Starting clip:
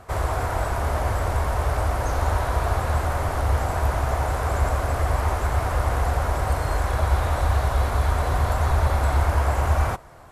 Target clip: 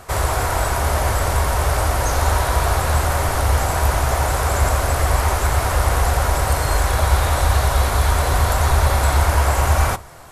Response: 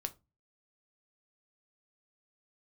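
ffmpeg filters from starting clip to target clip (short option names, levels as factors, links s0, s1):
-filter_complex "[0:a]highshelf=f=2700:g=10.5,asplit=2[s0][s1];[1:a]atrim=start_sample=2205[s2];[s1][s2]afir=irnorm=-1:irlink=0,volume=0.708[s3];[s0][s3]amix=inputs=2:normalize=0"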